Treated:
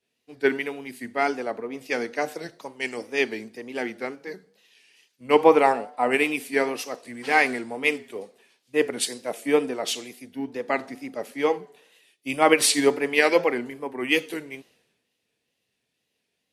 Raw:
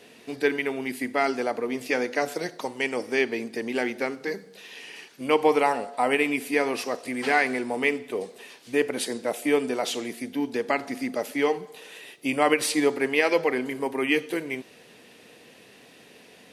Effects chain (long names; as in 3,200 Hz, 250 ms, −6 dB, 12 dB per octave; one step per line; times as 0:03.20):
tape wow and flutter 90 cents
multiband upward and downward expander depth 100%
level −1 dB